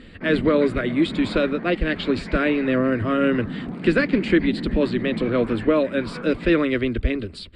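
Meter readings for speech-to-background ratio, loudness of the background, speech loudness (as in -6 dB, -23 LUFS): 10.0 dB, -32.0 LUFS, -22.0 LUFS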